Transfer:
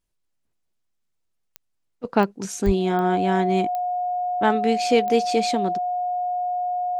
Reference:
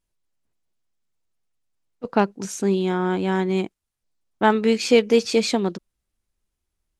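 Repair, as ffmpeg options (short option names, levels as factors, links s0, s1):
-filter_complex "[0:a]adeclick=t=4,bandreject=f=720:w=30,asplit=3[s0][s1][s2];[s0]afade=t=out:st=2.65:d=0.02[s3];[s1]highpass=f=140:w=0.5412,highpass=f=140:w=1.3066,afade=t=in:st=2.65:d=0.02,afade=t=out:st=2.77:d=0.02[s4];[s2]afade=t=in:st=2.77:d=0.02[s5];[s3][s4][s5]amix=inputs=3:normalize=0,asetnsamples=n=441:p=0,asendcmd='4.41 volume volume 3dB',volume=1"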